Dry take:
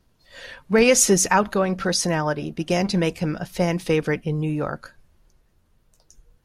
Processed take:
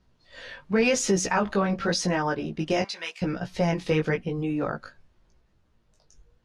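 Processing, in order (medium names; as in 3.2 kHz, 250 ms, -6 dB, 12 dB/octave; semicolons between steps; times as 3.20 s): 2.82–3.22 s: high-pass 1.4 kHz 12 dB/octave; chorus 0.9 Hz, delay 15.5 ms, depth 4.8 ms; peak limiter -14 dBFS, peak gain reduction 7 dB; low-pass 5.6 kHz 12 dB/octave; trim +1 dB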